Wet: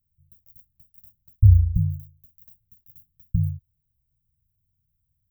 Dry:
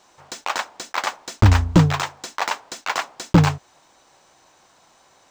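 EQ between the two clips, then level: inverse Chebyshev band-stop 450–5600 Hz, stop band 70 dB; +2.5 dB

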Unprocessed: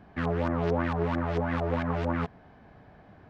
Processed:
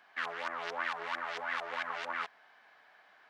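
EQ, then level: HPF 1500 Hz 12 dB/oct; notch 2500 Hz, Q 29; +4.0 dB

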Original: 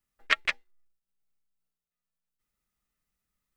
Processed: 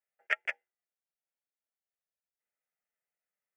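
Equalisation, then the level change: HPF 430 Hz 12 dB/oct; high shelf 2700 Hz -12 dB; fixed phaser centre 1100 Hz, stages 6; 0.0 dB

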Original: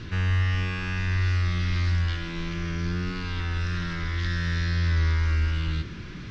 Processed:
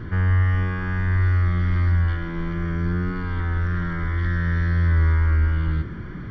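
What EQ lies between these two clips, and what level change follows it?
polynomial smoothing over 41 samples; +5.0 dB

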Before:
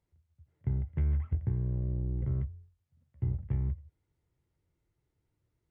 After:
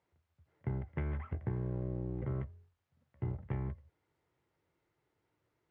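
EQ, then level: band-pass 1100 Hz, Q 0.53; +8.5 dB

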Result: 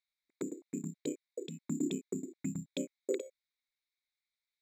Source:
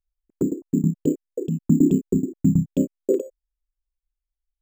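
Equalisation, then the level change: double band-pass 2900 Hz, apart 0.77 oct; +15.0 dB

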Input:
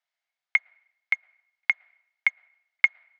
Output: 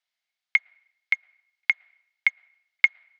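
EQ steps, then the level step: bell 4000 Hz +10 dB 2.2 oct; -5.0 dB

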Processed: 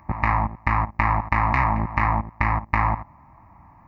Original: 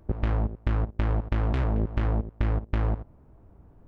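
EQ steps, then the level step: HPF 140 Hz 6 dB/oct; band shelf 1400 Hz +14 dB; fixed phaser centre 2200 Hz, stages 8; +7.5 dB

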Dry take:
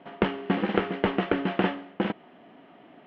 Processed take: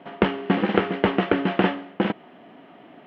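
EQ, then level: HPF 47 Hz; +4.5 dB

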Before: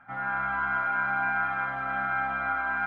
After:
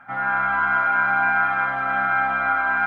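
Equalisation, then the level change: low shelf 160 Hz -7.5 dB; +8.0 dB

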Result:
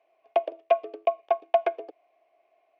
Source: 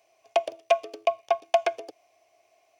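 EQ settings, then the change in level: dynamic EQ 380 Hz, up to +5 dB, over -39 dBFS, Q 1.1; HPF 270 Hz 12 dB/oct; air absorption 480 m; 0.0 dB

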